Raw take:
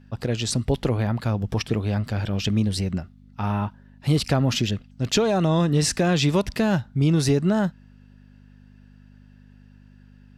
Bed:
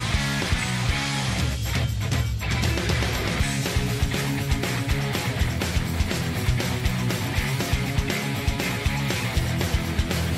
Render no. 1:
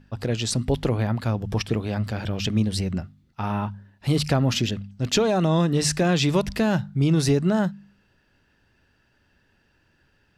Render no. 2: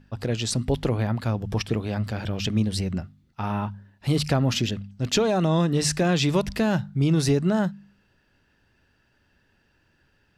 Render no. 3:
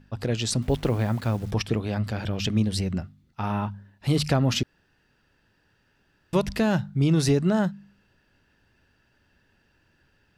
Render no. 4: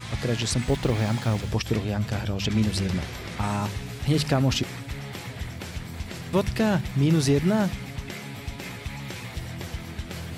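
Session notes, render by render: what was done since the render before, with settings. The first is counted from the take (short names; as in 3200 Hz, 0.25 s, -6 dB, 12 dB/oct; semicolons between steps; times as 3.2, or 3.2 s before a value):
de-hum 50 Hz, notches 5
gain -1 dB
0.62–1.51 level-crossing sampler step -44.5 dBFS; 4.63–6.33 room tone
add bed -10.5 dB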